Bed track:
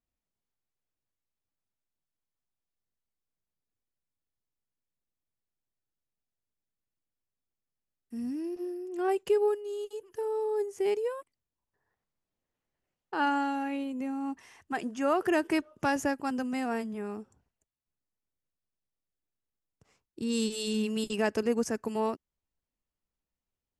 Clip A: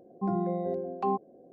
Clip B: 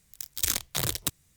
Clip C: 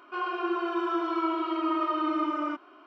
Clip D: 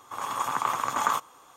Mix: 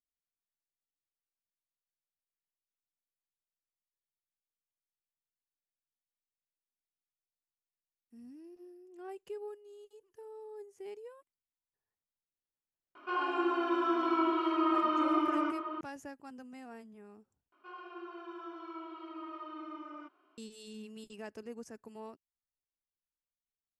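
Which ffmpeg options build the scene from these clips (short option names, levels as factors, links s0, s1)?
-filter_complex "[3:a]asplit=2[s0][s1];[0:a]volume=0.141[s2];[s0]asplit=2[s3][s4];[s4]adelay=816.3,volume=0.398,highshelf=f=4000:g=-18.4[s5];[s3][s5]amix=inputs=2:normalize=0[s6];[s2]asplit=2[s7][s8];[s7]atrim=end=17.524[s9];[s1]atrim=end=2.86,asetpts=PTS-STARTPTS,volume=0.141[s10];[s8]atrim=start=20.376[s11];[s6]atrim=end=2.86,asetpts=PTS-STARTPTS,volume=0.794,afade=t=in:d=0.004:c=hsin,afade=t=out:st=2.856:d=0.004:c=hsin,adelay=12950[s12];[s9][s10]acrossfade=d=0.004:c1=hsin:c2=hsin[s13];[s13][s11]acrossfade=d=0.004:c1=hsin:c2=hsin[s14];[s14][s12]amix=inputs=2:normalize=0"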